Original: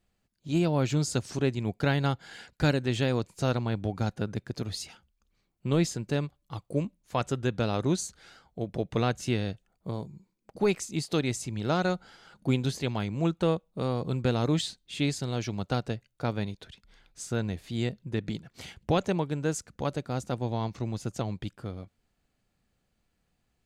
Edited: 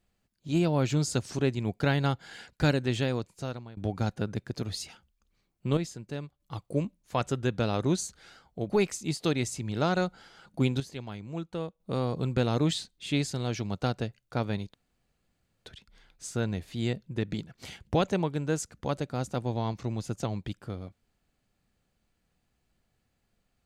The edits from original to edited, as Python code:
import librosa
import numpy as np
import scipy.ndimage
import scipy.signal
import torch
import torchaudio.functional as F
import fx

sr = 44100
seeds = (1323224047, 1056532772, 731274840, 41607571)

y = fx.edit(x, sr, fx.fade_out_to(start_s=2.88, length_s=0.89, floor_db=-22.5),
    fx.clip_gain(start_s=5.77, length_s=0.63, db=-8.0),
    fx.cut(start_s=8.7, length_s=1.88),
    fx.clip_gain(start_s=12.68, length_s=1.0, db=-9.0),
    fx.insert_room_tone(at_s=16.62, length_s=0.92), tone=tone)